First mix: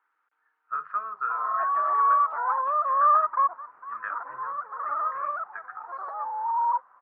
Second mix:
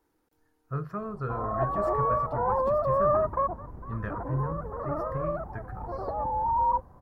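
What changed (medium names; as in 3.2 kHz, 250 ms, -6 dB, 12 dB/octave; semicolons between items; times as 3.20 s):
speech: remove low-pass 2.7 kHz 24 dB/octave; master: remove resonant high-pass 1.3 kHz, resonance Q 3.8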